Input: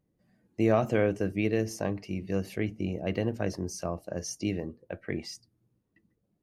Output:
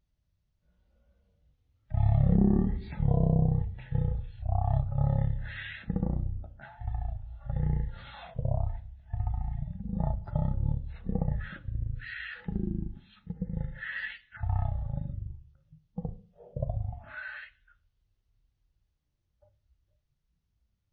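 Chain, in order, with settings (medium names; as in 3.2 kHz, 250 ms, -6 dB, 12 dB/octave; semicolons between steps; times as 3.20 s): wide varispeed 0.307×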